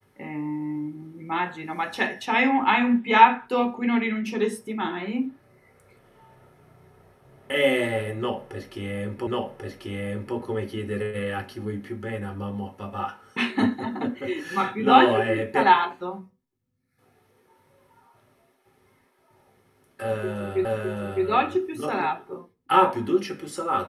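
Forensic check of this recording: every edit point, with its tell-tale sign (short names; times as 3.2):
9.27 repeat of the last 1.09 s
20.65 repeat of the last 0.61 s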